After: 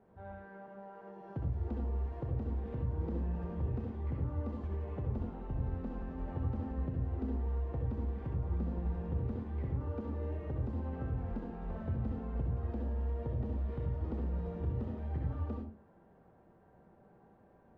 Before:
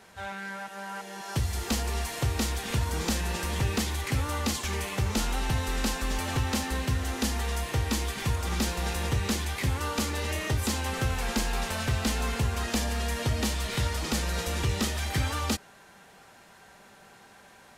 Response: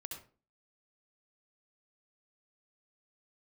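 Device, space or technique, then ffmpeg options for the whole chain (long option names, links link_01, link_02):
television next door: -filter_complex "[0:a]acompressor=threshold=-29dB:ratio=6,lowpass=570[link_01];[1:a]atrim=start_sample=2205[link_02];[link_01][link_02]afir=irnorm=-1:irlink=0"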